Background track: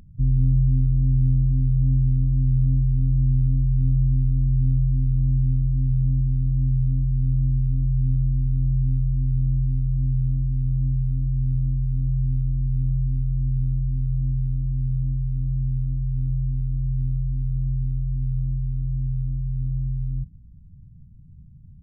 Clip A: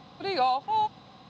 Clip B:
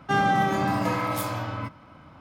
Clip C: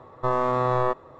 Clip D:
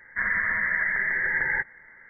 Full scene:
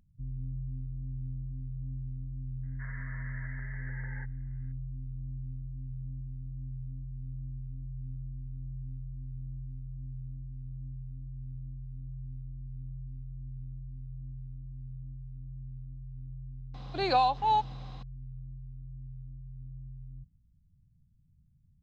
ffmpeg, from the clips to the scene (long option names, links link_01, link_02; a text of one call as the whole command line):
ffmpeg -i bed.wav -i cue0.wav -i cue1.wav -i cue2.wav -i cue3.wav -filter_complex "[0:a]volume=-19dB[link_01];[4:a]lowpass=1500,atrim=end=2.09,asetpts=PTS-STARTPTS,volume=-17.5dB,afade=type=in:duration=0.004:curve=hsin,afade=type=out:start_time=2.086:duration=0.004:curve=hsin,adelay=2630[link_02];[1:a]atrim=end=1.29,asetpts=PTS-STARTPTS,afade=type=in:duration=0.004:curve=hsin,afade=type=out:start_time=1.286:duration=0.004:curve=hsin,adelay=16740[link_03];[link_01][link_02][link_03]amix=inputs=3:normalize=0" out.wav